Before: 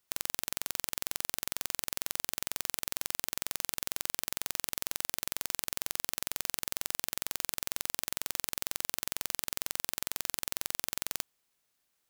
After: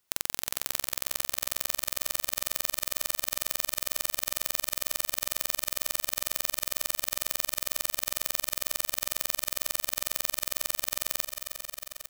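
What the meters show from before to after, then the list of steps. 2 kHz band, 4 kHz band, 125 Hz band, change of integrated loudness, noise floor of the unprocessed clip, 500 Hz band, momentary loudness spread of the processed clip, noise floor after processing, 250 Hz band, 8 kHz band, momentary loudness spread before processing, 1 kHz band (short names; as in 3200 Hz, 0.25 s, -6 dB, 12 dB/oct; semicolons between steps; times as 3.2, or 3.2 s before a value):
+4.0 dB, +4.5 dB, +2.5 dB, +4.0 dB, -78 dBFS, +6.0 dB, 1 LU, -55 dBFS, +1.5 dB, +4.5 dB, 1 LU, +4.0 dB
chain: feedback echo 0.21 s, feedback 52%, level -19.5 dB; lo-fi delay 0.315 s, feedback 80%, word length 7-bit, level -8.5 dB; gain +3 dB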